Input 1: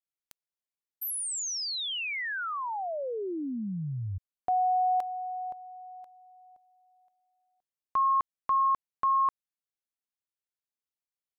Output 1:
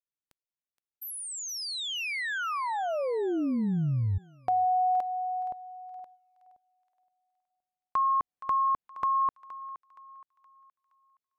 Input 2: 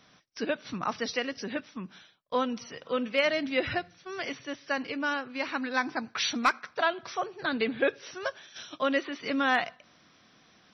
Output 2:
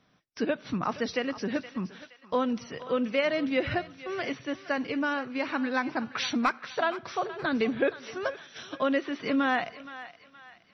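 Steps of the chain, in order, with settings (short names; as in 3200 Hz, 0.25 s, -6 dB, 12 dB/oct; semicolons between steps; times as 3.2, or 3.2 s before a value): gate -55 dBFS, range -10 dB; high shelf 4300 Hz -8.5 dB; compressor 1.5:1, threshold -33 dBFS; low shelf 460 Hz +5 dB; on a send: thinning echo 0.47 s, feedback 44%, high-pass 790 Hz, level -13 dB; on the sum: gain +2.5 dB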